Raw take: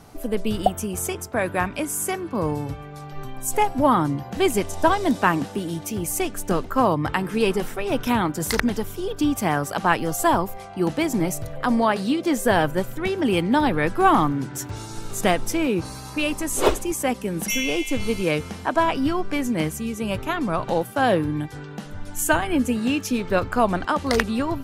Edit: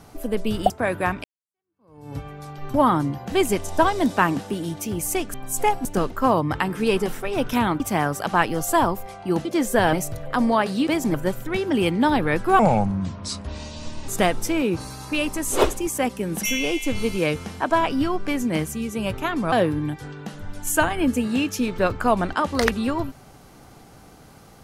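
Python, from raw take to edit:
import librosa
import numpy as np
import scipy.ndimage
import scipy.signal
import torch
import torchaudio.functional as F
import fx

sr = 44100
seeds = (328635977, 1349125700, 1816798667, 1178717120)

y = fx.edit(x, sr, fx.cut(start_s=0.7, length_s=0.54),
    fx.fade_in_span(start_s=1.78, length_s=0.93, curve='exp'),
    fx.move(start_s=3.28, length_s=0.51, to_s=6.39),
    fx.cut(start_s=8.34, length_s=0.97),
    fx.swap(start_s=10.96, length_s=0.27, other_s=12.17, other_length_s=0.48),
    fx.speed_span(start_s=14.1, length_s=1.03, speed=0.69),
    fx.cut(start_s=20.57, length_s=0.47), tone=tone)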